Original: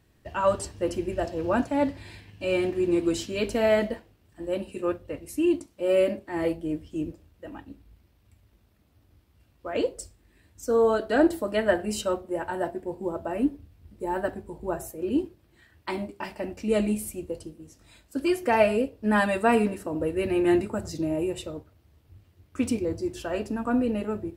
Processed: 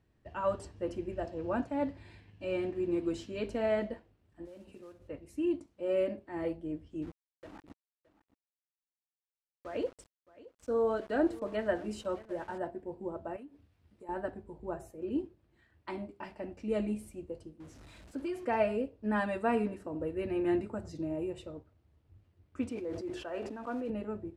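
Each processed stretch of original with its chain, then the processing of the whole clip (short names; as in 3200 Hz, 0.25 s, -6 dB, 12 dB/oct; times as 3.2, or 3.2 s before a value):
4.45–5.08 compressor 8:1, threshold -39 dBFS + modulation noise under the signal 14 dB
7.02–12.58 sample gate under -40 dBFS + echo 0.618 s -19.5 dB
13.36–14.09 HPF 70 Hz + tilt shelf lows -5.5 dB, about 700 Hz + compressor 4:1, threshold -40 dBFS
17.6–18.45 zero-crossing step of -40 dBFS + compressor 4:1, threshold -24 dBFS
22.69–23.9 block floating point 5-bit + tone controls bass -13 dB, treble -8 dB + sustainer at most 36 dB/s
whole clip: LPF 10000 Hz 12 dB/oct; high shelf 3200 Hz -10 dB; gain -8 dB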